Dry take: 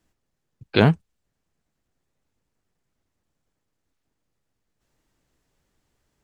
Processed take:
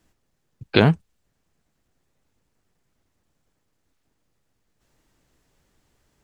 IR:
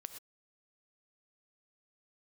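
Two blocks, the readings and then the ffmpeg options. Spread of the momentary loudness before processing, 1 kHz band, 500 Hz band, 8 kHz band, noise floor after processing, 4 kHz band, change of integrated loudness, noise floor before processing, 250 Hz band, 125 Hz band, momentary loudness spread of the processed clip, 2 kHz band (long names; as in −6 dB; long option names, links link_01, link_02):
9 LU, 0.0 dB, +1.0 dB, can't be measured, −73 dBFS, +2.5 dB, +0.5 dB, −79 dBFS, +0.5 dB, +0.5 dB, 8 LU, +1.5 dB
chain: -af "acompressor=threshold=-18dB:ratio=3,volume=5.5dB"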